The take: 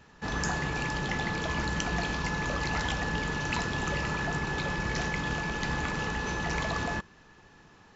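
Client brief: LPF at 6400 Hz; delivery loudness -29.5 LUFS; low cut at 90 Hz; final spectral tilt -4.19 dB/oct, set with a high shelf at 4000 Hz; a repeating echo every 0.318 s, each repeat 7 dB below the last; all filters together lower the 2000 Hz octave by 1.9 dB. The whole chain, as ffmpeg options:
-af "highpass=90,lowpass=6.4k,equalizer=f=2k:t=o:g=-3,highshelf=f=4k:g=4,aecho=1:1:318|636|954|1272|1590:0.447|0.201|0.0905|0.0407|0.0183,volume=1dB"

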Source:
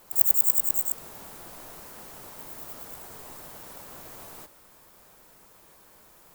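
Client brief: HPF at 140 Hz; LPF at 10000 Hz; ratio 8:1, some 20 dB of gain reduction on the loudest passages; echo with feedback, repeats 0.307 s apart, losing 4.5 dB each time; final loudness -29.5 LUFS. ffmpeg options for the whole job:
-af "highpass=140,lowpass=10k,acompressor=threshold=-50dB:ratio=8,aecho=1:1:307|614|921|1228|1535|1842|2149|2456|2763:0.596|0.357|0.214|0.129|0.0772|0.0463|0.0278|0.0167|0.01,volume=21.5dB"

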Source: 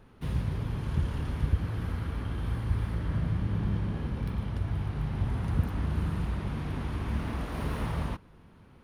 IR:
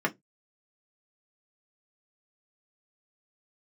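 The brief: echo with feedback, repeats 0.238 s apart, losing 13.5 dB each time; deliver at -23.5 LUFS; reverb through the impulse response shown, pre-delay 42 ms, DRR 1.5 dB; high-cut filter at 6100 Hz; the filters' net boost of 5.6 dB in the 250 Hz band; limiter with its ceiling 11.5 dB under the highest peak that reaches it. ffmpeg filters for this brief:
-filter_complex "[0:a]lowpass=6.1k,equalizer=f=250:t=o:g=8,alimiter=limit=-24dB:level=0:latency=1,aecho=1:1:238|476:0.211|0.0444,asplit=2[a][b];[1:a]atrim=start_sample=2205,adelay=42[c];[b][c]afir=irnorm=-1:irlink=0,volume=-12dB[d];[a][d]amix=inputs=2:normalize=0,volume=6.5dB"

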